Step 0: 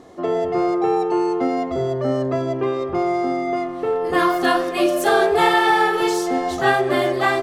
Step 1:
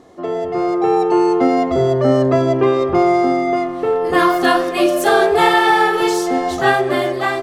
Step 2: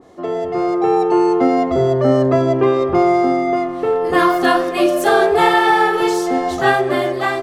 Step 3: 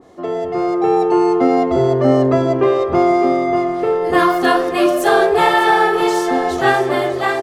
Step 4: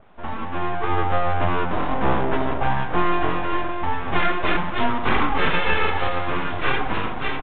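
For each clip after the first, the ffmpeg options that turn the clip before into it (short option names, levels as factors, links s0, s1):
-af "dynaudnorm=f=190:g=9:m=3.76,volume=0.891"
-af "adynamicequalizer=threshold=0.0501:dfrequency=2100:dqfactor=0.7:tfrequency=2100:tqfactor=0.7:attack=5:release=100:ratio=0.375:range=1.5:mode=cutabove:tftype=highshelf"
-af "aecho=1:1:604|1208|1812|2416|3020:0.251|0.113|0.0509|0.0229|0.0103"
-af "flanger=delay=7.8:depth=3.8:regen=-59:speed=0.82:shape=triangular,aeval=exprs='abs(val(0))':c=same,aresample=8000,aresample=44100"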